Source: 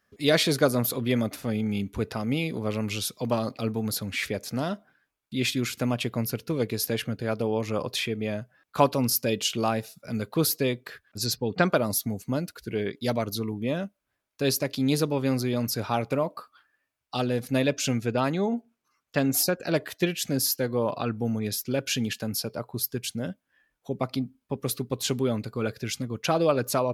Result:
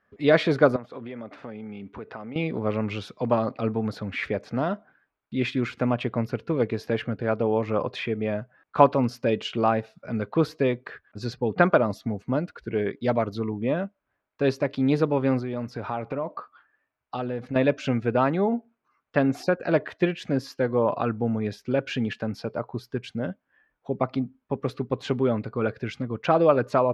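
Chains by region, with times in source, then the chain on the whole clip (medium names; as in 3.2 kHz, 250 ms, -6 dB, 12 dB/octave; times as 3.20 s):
0.76–2.36 s: high-pass 270 Hz 6 dB/octave + compression 5:1, threshold -36 dBFS + distance through air 71 m
15.39–17.56 s: treble shelf 9.8 kHz -4.5 dB + compression 3:1, threshold -30 dBFS
whole clip: low-pass 1.7 kHz 12 dB/octave; bass shelf 390 Hz -5.5 dB; trim +6 dB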